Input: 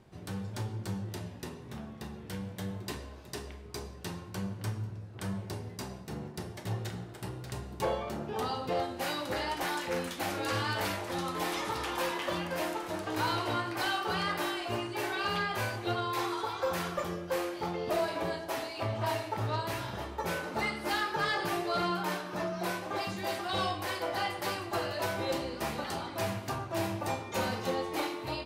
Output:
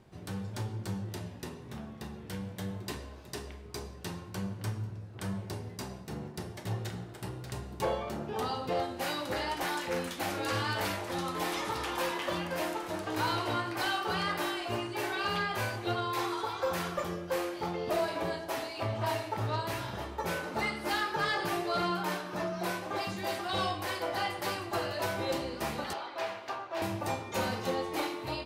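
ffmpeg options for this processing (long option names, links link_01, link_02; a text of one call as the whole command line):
ffmpeg -i in.wav -filter_complex "[0:a]asettb=1/sr,asplit=3[link_01][link_02][link_03];[link_01]atrim=end=25.934[link_04];[link_02]atrim=start=25.93:end=26.82,asetpts=PTS-STARTPTS,afade=type=in:duration=0.004:curve=qsin,afade=type=out:start_time=0.886:duration=0.004:curve=qsin,acrossover=split=380 5100:gain=0.0708 1 0.141[link_05][link_06][link_07];[link_05][link_06][link_07]amix=inputs=3:normalize=0[link_08];[link_03]atrim=start=26.816[link_09];[link_04][link_08]acrossfade=duration=0.004:curve1=hsin:curve2=qsin[link_10];[link_10][link_09]acrossfade=duration=0.004:curve1=qsin:curve2=hsin" out.wav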